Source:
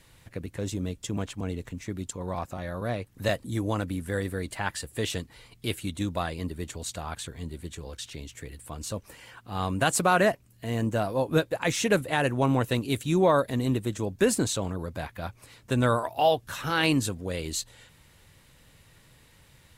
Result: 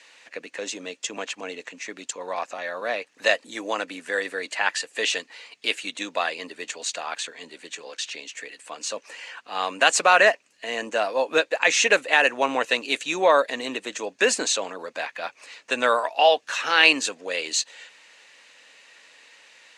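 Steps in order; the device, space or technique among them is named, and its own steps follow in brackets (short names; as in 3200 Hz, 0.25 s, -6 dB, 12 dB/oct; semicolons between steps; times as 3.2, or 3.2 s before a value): phone speaker on a table (speaker cabinet 350–7900 Hz, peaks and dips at 360 Hz -9 dB, 1800 Hz +6 dB, 2600 Hz +9 dB, 4400 Hz +4 dB, 6400 Hz +5 dB); gain +5 dB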